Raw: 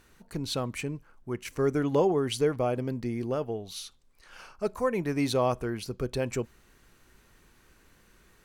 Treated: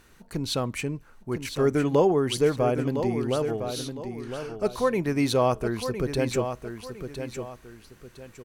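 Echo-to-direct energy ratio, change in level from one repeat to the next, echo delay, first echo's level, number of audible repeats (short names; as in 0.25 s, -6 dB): -8.0 dB, -9.5 dB, 1.009 s, -8.5 dB, 2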